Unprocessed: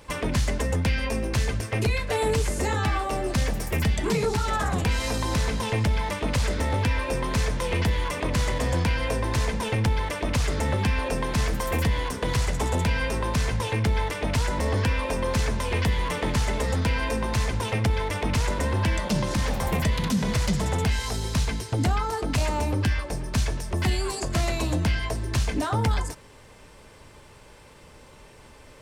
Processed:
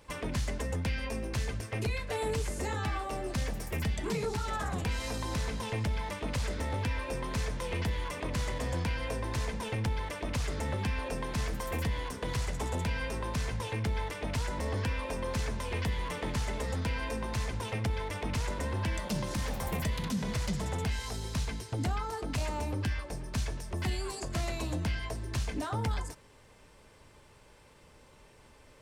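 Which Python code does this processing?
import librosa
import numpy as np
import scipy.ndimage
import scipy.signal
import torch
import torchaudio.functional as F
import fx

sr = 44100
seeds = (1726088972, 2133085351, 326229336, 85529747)

y = fx.high_shelf(x, sr, hz=11000.0, db=8.0, at=(18.94, 20.03))
y = F.gain(torch.from_numpy(y), -8.5).numpy()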